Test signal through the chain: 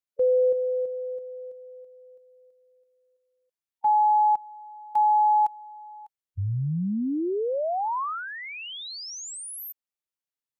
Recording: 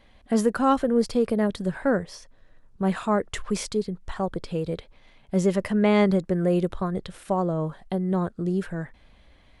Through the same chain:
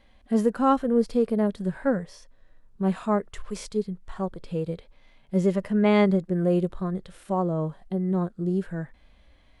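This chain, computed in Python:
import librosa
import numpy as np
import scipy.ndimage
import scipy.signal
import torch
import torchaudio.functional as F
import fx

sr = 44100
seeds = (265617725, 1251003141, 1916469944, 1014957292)

y = fx.hpss(x, sr, part='percussive', gain_db=-11)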